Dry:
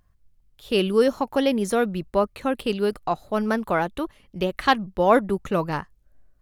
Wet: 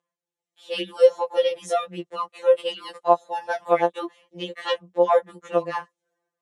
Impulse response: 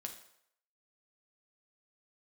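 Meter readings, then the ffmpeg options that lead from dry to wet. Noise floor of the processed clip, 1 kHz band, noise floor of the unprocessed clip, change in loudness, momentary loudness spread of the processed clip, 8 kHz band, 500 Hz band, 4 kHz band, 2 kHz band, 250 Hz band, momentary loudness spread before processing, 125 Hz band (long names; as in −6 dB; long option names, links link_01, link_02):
below −85 dBFS, −0.5 dB, −63 dBFS, 0.0 dB, 14 LU, can't be measured, +2.0 dB, −0.5 dB, −5.5 dB, −11.5 dB, 9 LU, −12.5 dB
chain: -af "dynaudnorm=framelen=180:gausssize=5:maxgain=11.5dB,highpass=480,equalizer=frequency=500:width_type=q:width=4:gain=7,equalizer=frequency=1400:width_type=q:width=4:gain=-7,equalizer=frequency=2400:width_type=q:width=4:gain=-4,equalizer=frequency=4700:width_type=q:width=4:gain=-8,lowpass=frequency=8500:width=0.5412,lowpass=frequency=8500:width=1.3066,afftfilt=real='re*2.83*eq(mod(b,8),0)':imag='im*2.83*eq(mod(b,8),0)':win_size=2048:overlap=0.75,volume=-3.5dB"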